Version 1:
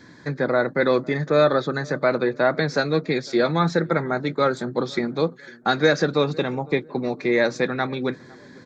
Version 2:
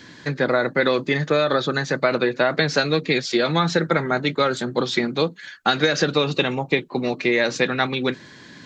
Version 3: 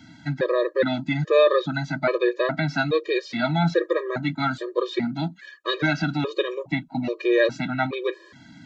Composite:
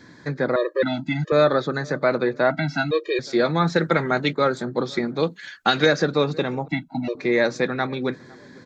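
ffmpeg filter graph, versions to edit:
-filter_complex "[2:a]asplit=3[s0][s1][s2];[1:a]asplit=2[s3][s4];[0:a]asplit=6[s5][s6][s7][s8][s9][s10];[s5]atrim=end=0.562[s11];[s0]atrim=start=0.558:end=1.322[s12];[s6]atrim=start=1.318:end=2.502[s13];[s1]atrim=start=2.498:end=3.192[s14];[s7]atrim=start=3.188:end=3.762[s15];[s3]atrim=start=3.758:end=4.332[s16];[s8]atrim=start=4.328:end=5.232[s17];[s4]atrim=start=5.228:end=5.862[s18];[s9]atrim=start=5.858:end=6.682[s19];[s2]atrim=start=6.678:end=7.152[s20];[s10]atrim=start=7.148[s21];[s11][s12]acrossfade=d=0.004:c1=hsin:c2=hsin[s22];[s22][s13]acrossfade=d=0.004:c1=hsin:c2=hsin[s23];[s23][s14]acrossfade=d=0.004:c1=hsin:c2=hsin[s24];[s24][s15]acrossfade=d=0.004:c1=hsin:c2=hsin[s25];[s25][s16]acrossfade=d=0.004:c1=hsin:c2=hsin[s26];[s26][s17]acrossfade=d=0.004:c1=hsin:c2=hsin[s27];[s27][s18]acrossfade=d=0.004:c1=hsin:c2=hsin[s28];[s28][s19]acrossfade=d=0.004:c1=hsin:c2=hsin[s29];[s29][s20]acrossfade=d=0.004:c1=hsin:c2=hsin[s30];[s30][s21]acrossfade=d=0.004:c1=hsin:c2=hsin"

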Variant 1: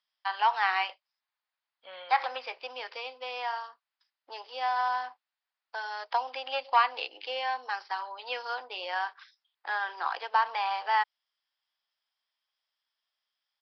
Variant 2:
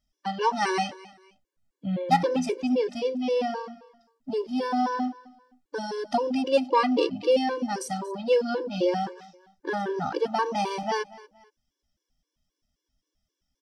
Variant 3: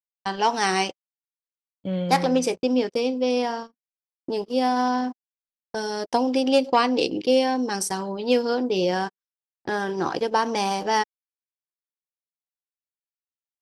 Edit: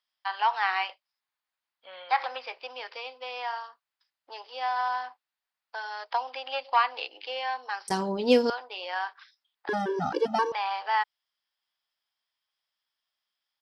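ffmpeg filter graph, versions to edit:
-filter_complex "[0:a]asplit=3[s0][s1][s2];[s0]atrim=end=7.882[s3];[2:a]atrim=start=7.878:end=8.502[s4];[s1]atrim=start=8.498:end=9.692[s5];[1:a]atrim=start=9.688:end=10.522[s6];[s2]atrim=start=10.518[s7];[s3][s4]acrossfade=d=0.004:c1=hsin:c2=hsin[s8];[s8][s5]acrossfade=d=0.004:c1=hsin:c2=hsin[s9];[s9][s6]acrossfade=d=0.004:c1=hsin:c2=hsin[s10];[s10][s7]acrossfade=d=0.004:c1=hsin:c2=hsin"

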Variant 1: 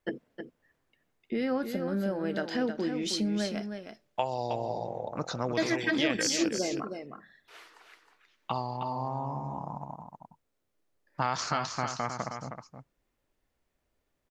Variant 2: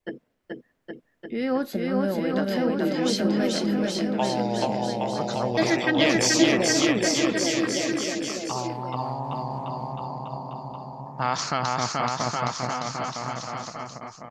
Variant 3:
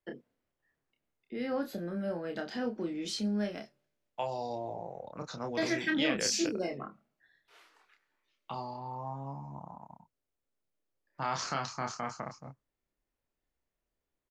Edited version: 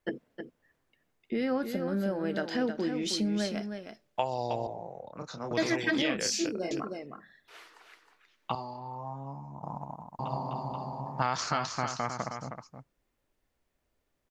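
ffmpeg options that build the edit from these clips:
-filter_complex "[2:a]asplit=3[s0][s1][s2];[0:a]asplit=5[s3][s4][s5][s6][s7];[s3]atrim=end=4.672[s8];[s0]atrim=start=4.668:end=5.512[s9];[s4]atrim=start=5.508:end=6.022[s10];[s1]atrim=start=6.018:end=6.712[s11];[s5]atrim=start=6.708:end=8.552[s12];[s2]atrim=start=8.548:end=9.632[s13];[s6]atrim=start=9.628:end=10.192[s14];[1:a]atrim=start=10.188:end=11.222[s15];[s7]atrim=start=11.218[s16];[s8][s9]acrossfade=d=0.004:c1=hsin:c2=hsin[s17];[s17][s10]acrossfade=d=0.004:c1=hsin:c2=hsin[s18];[s18][s11]acrossfade=d=0.004:c1=hsin:c2=hsin[s19];[s19][s12]acrossfade=d=0.004:c1=hsin:c2=hsin[s20];[s20][s13]acrossfade=d=0.004:c1=hsin:c2=hsin[s21];[s21][s14]acrossfade=d=0.004:c1=hsin:c2=hsin[s22];[s22][s15]acrossfade=d=0.004:c1=hsin:c2=hsin[s23];[s23][s16]acrossfade=d=0.004:c1=hsin:c2=hsin"

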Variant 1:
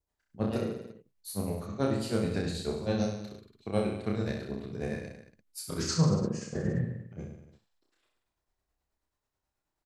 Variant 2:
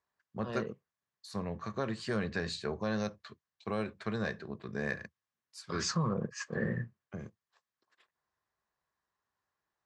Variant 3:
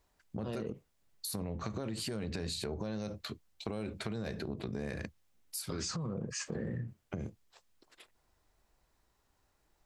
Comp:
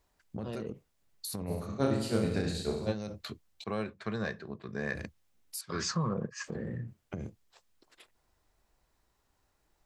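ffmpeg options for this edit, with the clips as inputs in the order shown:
-filter_complex "[1:a]asplit=2[s0][s1];[2:a]asplit=4[s2][s3][s4][s5];[s2]atrim=end=1.52[s6];[0:a]atrim=start=1.46:end=2.95[s7];[s3]atrim=start=2.89:end=3.642[s8];[s0]atrim=start=3.638:end=4.952[s9];[s4]atrim=start=4.948:end=5.612[s10];[s1]atrim=start=5.608:end=6.442[s11];[s5]atrim=start=6.438[s12];[s6][s7]acrossfade=d=0.06:c1=tri:c2=tri[s13];[s13][s8]acrossfade=d=0.06:c1=tri:c2=tri[s14];[s14][s9]acrossfade=d=0.004:c1=hsin:c2=hsin[s15];[s15][s10]acrossfade=d=0.004:c1=hsin:c2=hsin[s16];[s16][s11]acrossfade=d=0.004:c1=hsin:c2=hsin[s17];[s17][s12]acrossfade=d=0.004:c1=hsin:c2=hsin"

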